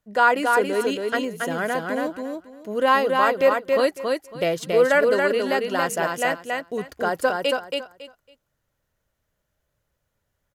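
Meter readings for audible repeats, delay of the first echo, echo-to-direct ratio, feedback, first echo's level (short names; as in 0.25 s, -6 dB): 3, 0.277 s, -3.5 dB, 21%, -3.5 dB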